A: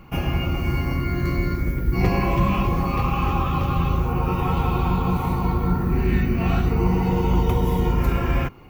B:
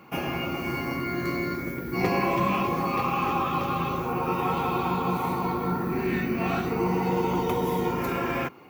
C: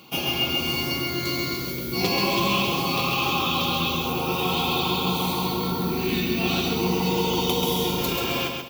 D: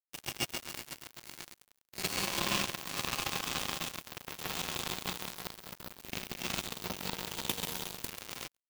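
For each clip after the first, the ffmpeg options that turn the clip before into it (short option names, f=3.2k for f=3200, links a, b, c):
-af "highpass=240,bandreject=f=2.9k:w=20"
-af "highshelf=f=2.5k:t=q:w=3:g=11,aecho=1:1:135|270|405|540|675:0.596|0.232|0.0906|0.0353|0.0138"
-filter_complex "[0:a]acrossover=split=220|810|4700[a][b][c][d];[b]asoftclip=type=tanh:threshold=-26dB[e];[a][e][c][d]amix=inputs=4:normalize=0,acrusher=bits=2:mix=0:aa=0.5,volume=-4.5dB"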